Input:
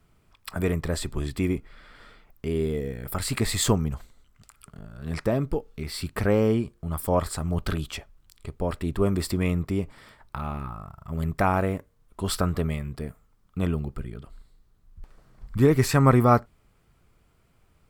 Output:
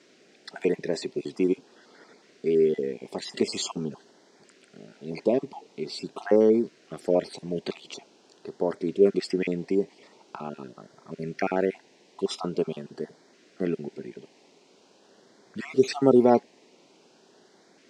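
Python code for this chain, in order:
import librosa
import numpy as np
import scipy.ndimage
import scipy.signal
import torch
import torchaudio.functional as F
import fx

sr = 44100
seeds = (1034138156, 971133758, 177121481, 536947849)

y = fx.spec_dropout(x, sr, seeds[0], share_pct=35)
y = fx.dmg_noise_colour(y, sr, seeds[1], colour='pink', level_db=-56.0)
y = fx.cabinet(y, sr, low_hz=210.0, low_slope=24, high_hz=6400.0, hz=(390.0, 1200.0, 3400.0), db=(7, -9, -3))
y = fx.filter_lfo_notch(y, sr, shape='saw_up', hz=0.45, low_hz=800.0, high_hz=2900.0, q=1.8)
y = y * librosa.db_to_amplitude(1.5)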